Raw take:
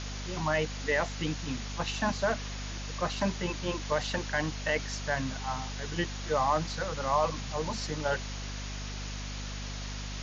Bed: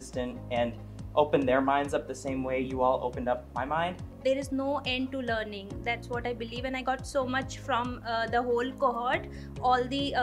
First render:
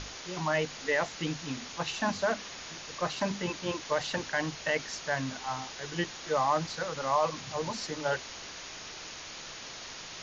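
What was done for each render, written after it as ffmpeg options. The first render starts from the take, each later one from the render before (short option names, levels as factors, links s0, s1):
-af "bandreject=f=50:t=h:w=6,bandreject=f=100:t=h:w=6,bandreject=f=150:t=h:w=6,bandreject=f=200:t=h:w=6,bandreject=f=250:t=h:w=6"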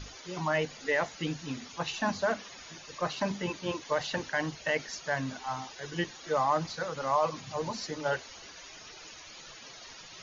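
-af "afftdn=nr=13:nf=-44"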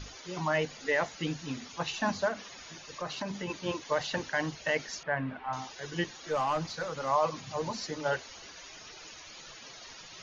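-filter_complex "[0:a]asettb=1/sr,asplit=3[s0][s1][s2];[s0]atrim=end=2.284[s3];[s1]atrim=start=2.28:end=3.5,asetpts=PTS-STARTPTS,afade=t=in:d=0.004:c=qsin,afade=t=out:st=1.216:d=0.004:c=qsin,acompressor=threshold=0.0224:ratio=2.5:attack=3.2:release=140:knee=1:detection=peak[s4];[s2]atrim=start=3.496[s5];[s3][s4]acrossfade=d=0.004:c1=hsin:c2=qsin[s6];[s6][s5]acrossfade=d=0.004:c1=qsin:c2=hsin,asettb=1/sr,asplit=3[s7][s8][s9];[s7]atrim=end=5.034[s10];[s8]atrim=start=5.03:end=5.53,asetpts=PTS-STARTPTS,afade=t=in:d=0.004:c=qsin,afade=t=out:st=0.496:d=0.004:c=qsin,lowpass=f=2500:w=0.5412,lowpass=f=2500:w=1.3066[s11];[s9]atrim=start=5.526[s12];[s10][s11]acrossfade=d=0.004:c1=hsin:c2=qsin[s13];[s13][s12]acrossfade=d=0.004:c1=qsin:c2=hsin,asettb=1/sr,asplit=3[s14][s15][s16];[s14]atrim=end=6.304[s17];[s15]atrim=start=6.3:end=7.08,asetpts=PTS-STARTPTS,afade=t=in:d=0.004:c=qsin,afade=t=out:st=0.776:d=0.004:c=qsin,aeval=exprs='(tanh(14.1*val(0)+0.1)-tanh(0.1))/14.1':c=same[s18];[s16]atrim=start=7.076[s19];[s17][s18]acrossfade=d=0.004:c1=hsin:c2=qsin[s20];[s20][s19]acrossfade=d=0.004:c1=qsin:c2=hsin"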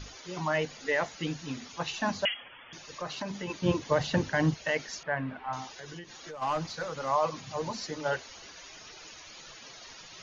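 -filter_complex "[0:a]asettb=1/sr,asplit=3[s0][s1][s2];[s0]atrim=end=2.254[s3];[s1]atrim=start=2.25:end=2.73,asetpts=PTS-STARTPTS,afade=t=in:d=0.004:c=qsin,afade=t=out:st=0.476:d=0.004:c=qsin,lowpass=f=3000:t=q:w=0.5098,lowpass=f=3000:t=q:w=0.6013,lowpass=f=3000:t=q:w=0.9,lowpass=f=3000:t=q:w=2.563,afreqshift=-3500[s4];[s2]atrim=start=2.726[s5];[s3][s4]acrossfade=d=0.004:c1=hsin:c2=qsin[s6];[s6][s5]acrossfade=d=0.004:c1=qsin:c2=hsin,asettb=1/sr,asplit=3[s7][s8][s9];[s7]atrim=end=3.624[s10];[s8]atrim=start=3.62:end=4.54,asetpts=PTS-STARTPTS,afade=t=in:d=0.004:c=qsin,afade=t=out:st=0.916:d=0.004:c=qsin,equalizer=f=95:w=0.31:g=14[s11];[s9]atrim=start=4.536[s12];[s10][s11]acrossfade=d=0.004:c1=hsin:c2=qsin[s13];[s13][s12]acrossfade=d=0.004:c1=qsin:c2=hsin,asplit=3[s14][s15][s16];[s14]afade=t=out:st=5.71:d=0.02[s17];[s15]acompressor=threshold=0.0112:ratio=12:attack=3.2:release=140:knee=1:detection=peak,afade=t=in:st=5.71:d=0.02,afade=t=out:st=6.41:d=0.02[s18];[s16]afade=t=in:st=6.41:d=0.02[s19];[s17][s18][s19]amix=inputs=3:normalize=0"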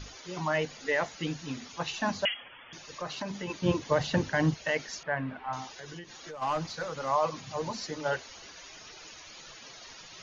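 -af anull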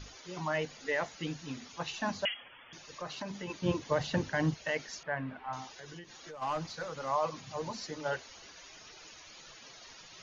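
-af "volume=0.631"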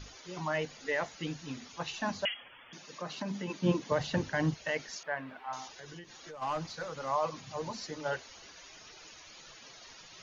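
-filter_complex "[0:a]asettb=1/sr,asplit=3[s0][s1][s2];[s0]atrim=end=2.714[s3];[s1]atrim=start=2.71:end=3.92,asetpts=PTS-STARTPTS,afade=t=in:d=0.004:c=qsin,afade=t=out:st=1.206:d=0.004:c=qsin,highpass=f=190:t=q:w=1.9[s4];[s2]atrim=start=3.916[s5];[s3][s4]acrossfade=d=0.004:c1=hsin:c2=qsin[s6];[s6][s5]acrossfade=d=0.004:c1=qsin:c2=hsin,asettb=1/sr,asplit=3[s7][s8][s9];[s7]atrim=end=4.964[s10];[s8]atrim=start=4.96:end=5.68,asetpts=PTS-STARTPTS,afade=t=in:d=0.004:c=qsin,afade=t=out:st=0.716:d=0.004:c=qsin,bass=f=250:g=-12,treble=f=4000:g=6[s11];[s9]atrim=start=5.676[s12];[s10][s11]acrossfade=d=0.004:c1=hsin:c2=qsin[s13];[s13][s12]acrossfade=d=0.004:c1=qsin:c2=hsin"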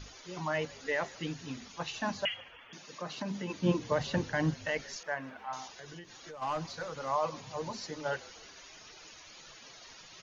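-filter_complex "[0:a]asplit=4[s0][s1][s2][s3];[s1]adelay=154,afreqshift=-55,volume=0.075[s4];[s2]adelay=308,afreqshift=-110,volume=0.0376[s5];[s3]adelay=462,afreqshift=-165,volume=0.0188[s6];[s0][s4][s5][s6]amix=inputs=4:normalize=0"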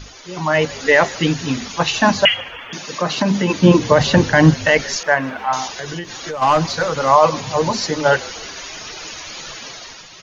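-af "dynaudnorm=f=160:g=7:m=2.82,alimiter=level_in=3.55:limit=0.891:release=50:level=0:latency=1"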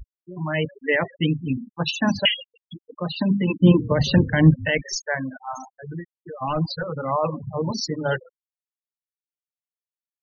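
-af "afftfilt=real='re*gte(hypot(re,im),0.158)':imag='im*gte(hypot(re,im),0.158)':win_size=1024:overlap=0.75,equalizer=f=940:t=o:w=2.6:g=-13"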